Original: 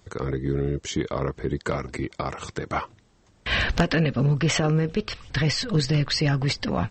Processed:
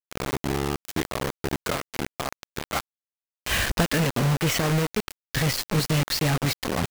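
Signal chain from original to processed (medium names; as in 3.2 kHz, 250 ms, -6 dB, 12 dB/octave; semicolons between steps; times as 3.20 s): bit crusher 4-bit; trim -2 dB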